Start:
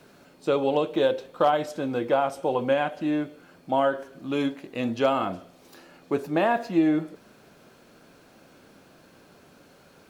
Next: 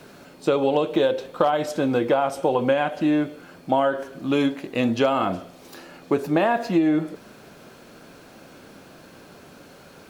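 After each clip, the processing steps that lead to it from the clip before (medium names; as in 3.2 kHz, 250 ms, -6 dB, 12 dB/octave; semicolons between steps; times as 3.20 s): compression 5:1, threshold -24 dBFS, peak gain reduction 8 dB; trim +7.5 dB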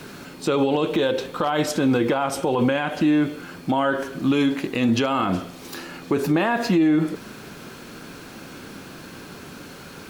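peaking EQ 620 Hz -8 dB 0.77 oct; peak limiter -20.5 dBFS, peak gain reduction 11 dB; trim +8.5 dB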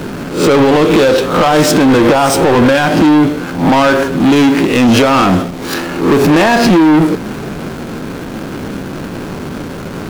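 reverse spectral sustain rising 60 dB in 0.43 s; waveshaping leveller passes 3; hysteresis with a dead band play -20.5 dBFS; trim +5.5 dB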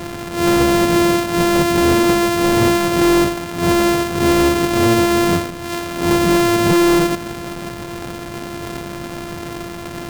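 sorted samples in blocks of 128 samples; trim -5.5 dB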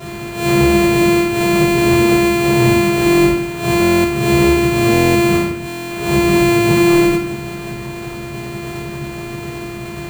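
reverberation RT60 0.60 s, pre-delay 4 ms, DRR -7.5 dB; buffer glitch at 3.81/4.92/5.68 s, samples 1024, times 9; trim -8.5 dB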